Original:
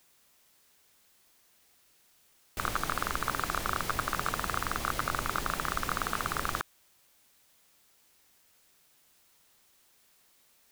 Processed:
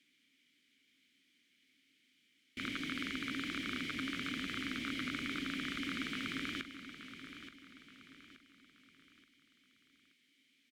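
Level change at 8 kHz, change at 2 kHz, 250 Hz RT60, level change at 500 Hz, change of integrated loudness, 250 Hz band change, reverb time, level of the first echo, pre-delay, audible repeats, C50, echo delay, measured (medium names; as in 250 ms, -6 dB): -15.0 dB, -5.0 dB, no reverb, -12.5 dB, -7.0 dB, +3.5 dB, no reverb, -11.0 dB, no reverb, 4, no reverb, 876 ms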